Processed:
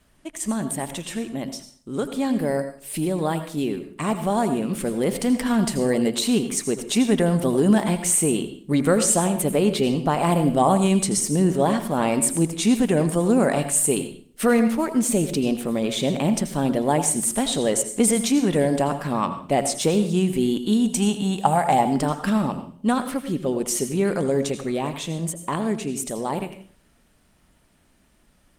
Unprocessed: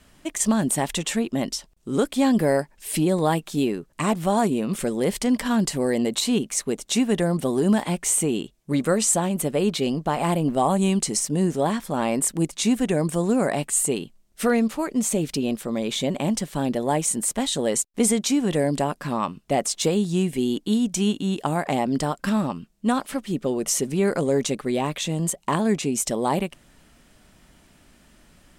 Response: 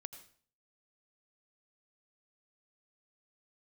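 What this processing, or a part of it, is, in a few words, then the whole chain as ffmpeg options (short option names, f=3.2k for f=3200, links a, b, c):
speakerphone in a meeting room: -filter_complex "[0:a]asplit=3[a][b][c];[a]afade=t=out:st=20.84:d=0.02[d];[b]equalizer=f=315:t=o:w=0.33:g=-10,equalizer=f=800:t=o:w=0.33:g=11,equalizer=f=8k:t=o:w=0.33:g=7,equalizer=f=12.5k:t=o:w=0.33:g=4,afade=t=in:st=20.84:d=0.02,afade=t=out:st=21.8:d=0.02[e];[c]afade=t=in:st=21.8:d=0.02[f];[d][e][f]amix=inputs=3:normalize=0[g];[1:a]atrim=start_sample=2205[h];[g][h]afir=irnorm=-1:irlink=0,dynaudnorm=f=450:g=21:m=7.5dB" -ar 48000 -c:a libopus -b:a 32k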